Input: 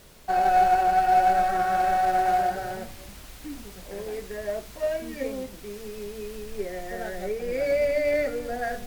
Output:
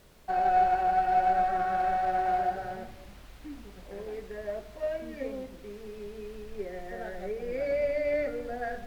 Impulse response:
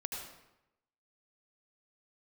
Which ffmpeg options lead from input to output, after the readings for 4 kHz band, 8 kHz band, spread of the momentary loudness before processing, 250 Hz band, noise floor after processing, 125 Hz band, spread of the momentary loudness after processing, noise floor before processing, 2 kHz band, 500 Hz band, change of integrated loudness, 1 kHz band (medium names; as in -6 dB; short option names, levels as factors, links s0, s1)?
-9.5 dB, under -10 dB, 19 LU, -4.5 dB, -49 dBFS, -4.5 dB, 19 LU, -45 dBFS, -6.0 dB, -4.5 dB, -4.5 dB, -4.5 dB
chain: -filter_complex "[0:a]asplit=2[s0][s1];[1:a]atrim=start_sample=2205,lowpass=2200[s2];[s1][s2]afir=irnorm=-1:irlink=0,volume=0.282[s3];[s0][s3]amix=inputs=2:normalize=0,acrossover=split=4400[s4][s5];[s5]acompressor=threshold=0.00141:ratio=4:attack=1:release=60[s6];[s4][s6]amix=inputs=2:normalize=0,volume=0.473"